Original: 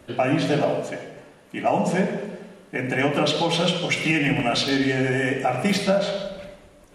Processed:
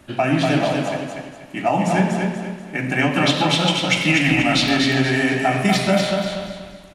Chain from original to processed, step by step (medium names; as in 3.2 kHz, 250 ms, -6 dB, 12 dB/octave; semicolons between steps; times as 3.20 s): peaking EQ 470 Hz -14 dB 0.37 oct; feedback delay 242 ms, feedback 36%, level -4 dB; in parallel at -12 dB: hysteresis with a dead band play -31 dBFS; on the sum: trim +2 dB